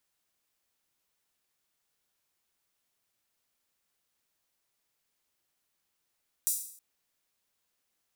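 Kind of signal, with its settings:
open synth hi-hat length 0.32 s, high-pass 7,900 Hz, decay 0.60 s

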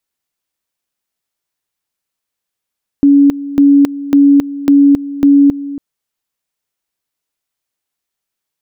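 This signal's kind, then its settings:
tone at two levels in turn 282 Hz −3.5 dBFS, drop 16 dB, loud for 0.27 s, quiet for 0.28 s, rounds 5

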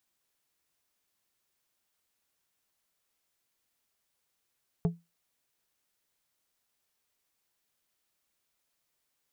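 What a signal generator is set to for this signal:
struck glass plate, lowest mode 169 Hz, decay 0.22 s, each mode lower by 7.5 dB, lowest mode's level −20 dB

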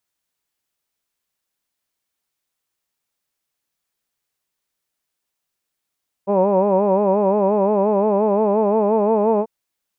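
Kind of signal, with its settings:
vowel from formants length 3.19 s, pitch 193 Hz, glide +2 semitones, vibrato 5.7 Hz, vibrato depth 0.95 semitones, F1 520 Hz, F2 940 Hz, F3 2,500 Hz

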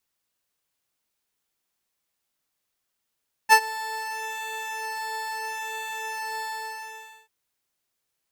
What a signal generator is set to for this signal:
subtractive patch with pulse-width modulation A5, oscillator 2 saw, interval −12 semitones, detune 13 cents, oscillator 2 level −12 dB, sub −20 dB, noise −26 dB, filter highpass, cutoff 170 Hz, Q 4.6, filter envelope 0.5 octaves, filter sustain 15%, attack 38 ms, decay 0.07 s, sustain −20.5 dB, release 0.86 s, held 2.93 s, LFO 0.75 Hz, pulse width 23%, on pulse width 6%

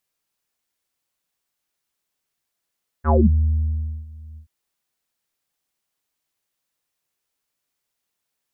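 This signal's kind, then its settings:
subtractive voice square D#2 24 dB per octave, low-pass 150 Hz, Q 7.7, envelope 3.5 octaves, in 0.25 s, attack 56 ms, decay 0.96 s, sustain −24 dB, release 0.10 s, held 1.33 s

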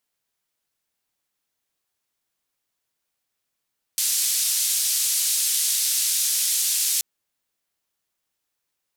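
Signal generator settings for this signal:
band-limited noise 4,500–12,000 Hz, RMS −22.5 dBFS 3.03 s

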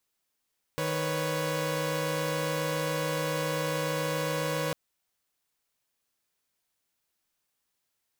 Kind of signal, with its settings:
held notes D#3/B4/C#5 saw, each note −30 dBFS 3.95 s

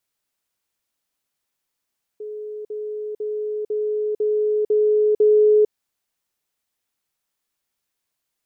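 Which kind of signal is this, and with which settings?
level staircase 424 Hz −29 dBFS, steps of 3 dB, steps 7, 0.45 s 0.05 s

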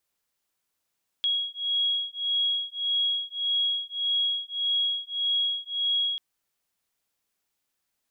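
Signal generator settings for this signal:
two tones that beat 3,310 Hz, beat 1.7 Hz, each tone −27.5 dBFS 4.94 s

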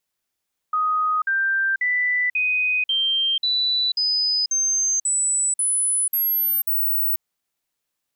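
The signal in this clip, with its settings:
stepped sweep 1,250 Hz up, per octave 3, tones 12, 0.49 s, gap 0.05 s −18 dBFS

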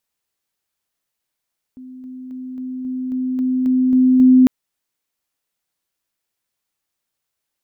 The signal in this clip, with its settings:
level staircase 256 Hz −33.5 dBFS, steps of 3 dB, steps 10, 0.27 s 0.00 s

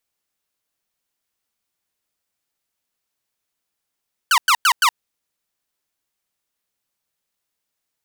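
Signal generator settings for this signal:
repeated falling chirps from 1,600 Hz, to 890 Hz, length 0.07 s saw, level −9 dB, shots 4, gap 0.10 s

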